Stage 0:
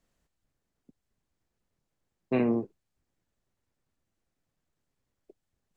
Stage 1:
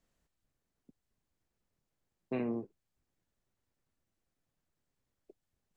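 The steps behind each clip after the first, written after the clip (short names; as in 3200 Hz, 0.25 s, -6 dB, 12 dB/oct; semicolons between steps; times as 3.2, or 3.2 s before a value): compressor 1.5:1, threshold -39 dBFS, peak gain reduction 6.5 dB; gain -3 dB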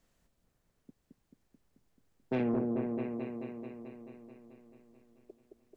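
repeats that get brighter 0.218 s, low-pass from 750 Hz, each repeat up 1 oct, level -3 dB; soft clip -30 dBFS, distortion -16 dB; gain +6 dB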